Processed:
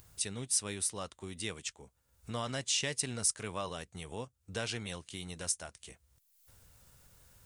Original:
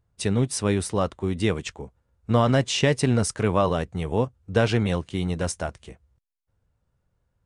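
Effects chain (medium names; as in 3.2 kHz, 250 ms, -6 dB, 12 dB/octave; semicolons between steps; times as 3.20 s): pre-emphasis filter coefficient 0.9; upward compressor, threshold -38 dBFS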